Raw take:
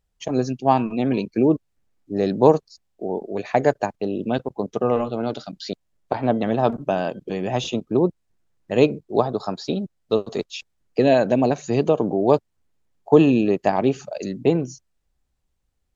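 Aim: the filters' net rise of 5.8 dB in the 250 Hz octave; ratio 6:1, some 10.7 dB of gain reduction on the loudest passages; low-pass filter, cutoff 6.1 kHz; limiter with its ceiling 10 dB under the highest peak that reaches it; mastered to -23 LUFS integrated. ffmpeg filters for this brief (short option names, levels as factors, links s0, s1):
-af "lowpass=6100,equalizer=f=250:t=o:g=7,acompressor=threshold=0.141:ratio=6,volume=1.41,alimiter=limit=0.266:level=0:latency=1"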